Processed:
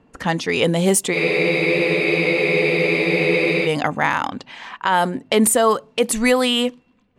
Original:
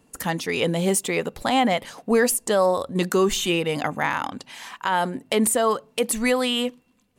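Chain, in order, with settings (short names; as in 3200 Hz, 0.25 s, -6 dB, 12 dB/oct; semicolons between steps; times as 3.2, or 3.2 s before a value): low-pass opened by the level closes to 2400 Hz, open at -17.5 dBFS; spectral freeze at 1.17, 2.48 s; gain +5 dB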